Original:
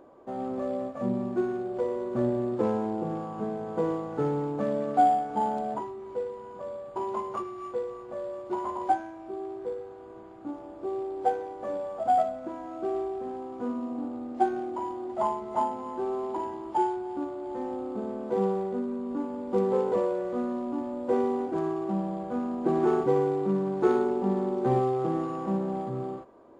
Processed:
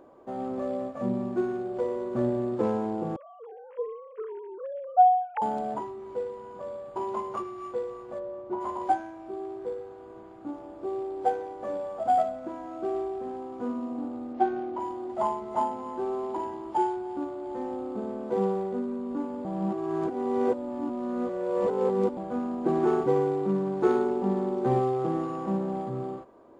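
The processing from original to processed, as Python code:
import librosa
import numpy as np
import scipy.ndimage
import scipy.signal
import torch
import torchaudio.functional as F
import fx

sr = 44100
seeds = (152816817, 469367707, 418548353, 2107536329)

y = fx.sine_speech(x, sr, at=(3.16, 5.42))
y = fx.lowpass(y, sr, hz=1000.0, slope=6, at=(8.18, 8.6), fade=0.02)
y = fx.lowpass(y, sr, hz=4200.0, slope=12, at=(14.33, 14.8))
y = fx.edit(y, sr, fx.reverse_span(start_s=19.45, length_s=2.72), tone=tone)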